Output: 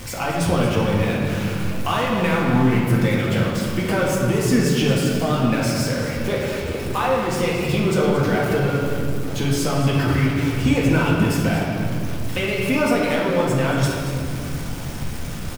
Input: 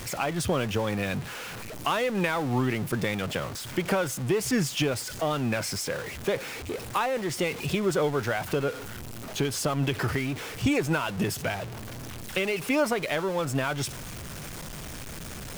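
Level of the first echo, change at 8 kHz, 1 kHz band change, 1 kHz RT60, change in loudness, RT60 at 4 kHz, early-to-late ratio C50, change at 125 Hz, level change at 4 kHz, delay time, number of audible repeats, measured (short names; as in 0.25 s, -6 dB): -10.0 dB, +3.0 dB, +6.5 dB, 2.1 s, +8.0 dB, 1.6 s, 0.0 dB, +11.5 dB, +5.0 dB, 0.228 s, 1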